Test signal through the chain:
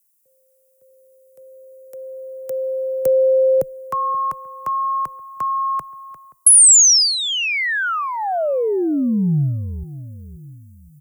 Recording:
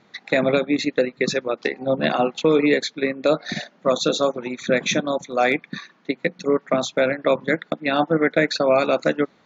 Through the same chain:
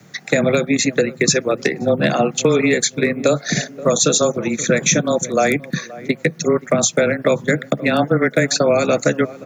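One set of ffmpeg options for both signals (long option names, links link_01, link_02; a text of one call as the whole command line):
ffmpeg -i in.wav -filter_complex "[0:a]equalizer=frequency=160:width_type=o:width=0.67:gain=11,equalizer=frequency=1000:width_type=o:width=0.67:gain=-8,equalizer=frequency=6300:width_type=o:width=0.67:gain=-5,asplit=2[link_01][link_02];[link_02]adelay=526,lowpass=frequency=890:poles=1,volume=-20dB,asplit=2[link_03][link_04];[link_04]adelay=526,lowpass=frequency=890:poles=1,volume=0.39,asplit=2[link_05][link_06];[link_06]adelay=526,lowpass=frequency=890:poles=1,volume=0.39[link_07];[link_01][link_03][link_05][link_07]amix=inputs=4:normalize=0,acrossover=split=1400[link_08][link_09];[link_08]crystalizer=i=7.5:c=0[link_10];[link_10][link_09]amix=inputs=2:normalize=0,afreqshift=-18,acrossover=split=170|590|6200[link_11][link_12][link_13][link_14];[link_11]acompressor=threshold=-37dB:ratio=4[link_15];[link_12]acompressor=threshold=-24dB:ratio=4[link_16];[link_13]acompressor=threshold=-25dB:ratio=4[link_17];[link_14]acompressor=threshold=-42dB:ratio=4[link_18];[link_15][link_16][link_17][link_18]amix=inputs=4:normalize=0,aexciter=amount=11.7:drive=3.5:freq=5700,volume=7dB" out.wav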